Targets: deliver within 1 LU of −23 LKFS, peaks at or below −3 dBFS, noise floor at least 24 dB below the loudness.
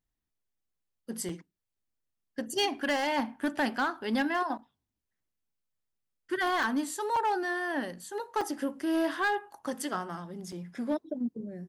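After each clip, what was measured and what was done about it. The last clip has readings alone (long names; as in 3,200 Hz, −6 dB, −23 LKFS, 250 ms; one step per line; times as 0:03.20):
share of clipped samples 0.9%; peaks flattened at −22.5 dBFS; number of dropouts 5; longest dropout 4.3 ms; integrated loudness −31.5 LKFS; sample peak −22.5 dBFS; target loudness −23.0 LKFS
→ clipped peaks rebuilt −22.5 dBFS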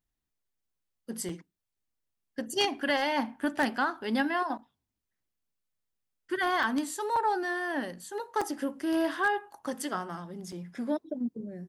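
share of clipped samples 0.0%; number of dropouts 5; longest dropout 4.3 ms
→ repair the gap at 0:01.29/0:06.63/0:07.16/0:08.41/0:10.52, 4.3 ms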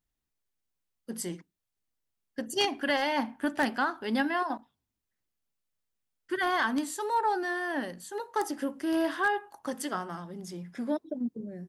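number of dropouts 0; integrated loudness −31.0 LKFS; sample peak −13.5 dBFS; target loudness −23.0 LKFS
→ level +8 dB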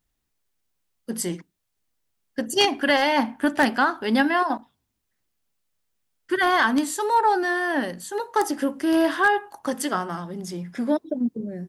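integrated loudness −23.0 LKFS; sample peak −5.5 dBFS; background noise floor −77 dBFS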